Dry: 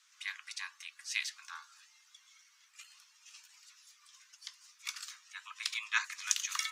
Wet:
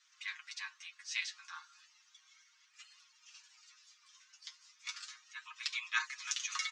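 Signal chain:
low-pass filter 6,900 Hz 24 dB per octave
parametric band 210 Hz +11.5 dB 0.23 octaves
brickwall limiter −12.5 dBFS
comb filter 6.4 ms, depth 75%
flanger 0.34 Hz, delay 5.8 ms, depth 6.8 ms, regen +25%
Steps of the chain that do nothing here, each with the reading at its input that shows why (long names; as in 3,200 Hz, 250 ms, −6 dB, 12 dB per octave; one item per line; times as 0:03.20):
parametric band 210 Hz: nothing at its input below 760 Hz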